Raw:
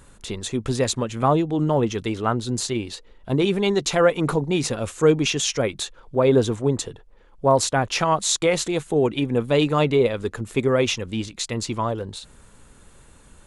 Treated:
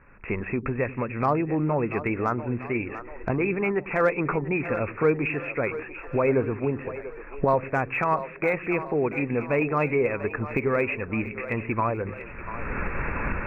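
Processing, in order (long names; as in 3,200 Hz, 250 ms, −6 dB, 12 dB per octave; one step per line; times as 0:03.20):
camcorder AGC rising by 29 dB per second
Chebyshev low-pass filter 2,600 Hz, order 10
de-essing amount 100%
tilt shelving filter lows −6.5 dB, about 1,400 Hz
echo with a time of its own for lows and highs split 360 Hz, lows 97 ms, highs 690 ms, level −12.5 dB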